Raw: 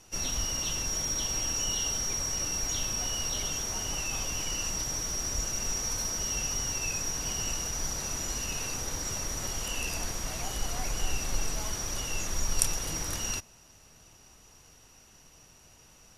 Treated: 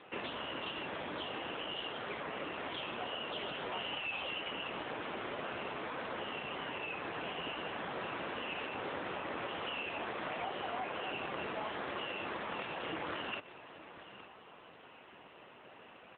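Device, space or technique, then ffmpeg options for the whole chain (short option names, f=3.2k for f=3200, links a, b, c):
voicemail: -filter_complex "[0:a]asettb=1/sr,asplit=3[a][b][c];[a]atrim=end=3.724[d];[b]atrim=start=3.72:end=4.4,asetpts=PTS-STARTPTS,afade=t=in:d=0.004:c=qsin,afade=t=out:st=0.676:d=0.004:c=qsin,highshelf=f=4.2k:t=q:w=3:g=-8.5[e];[c]atrim=start=4.396[f];[d][e]acrossfade=d=0.004:c1=hsin:c2=qsin[g];[g][f]acrossfade=d=0.004:c1=qsin:c2=hsin,highpass=300,lowpass=2.7k,aecho=1:1:864:0.0944,acompressor=threshold=-44dB:ratio=6,volume=10dB" -ar 8000 -c:a libopencore_amrnb -b:a 7950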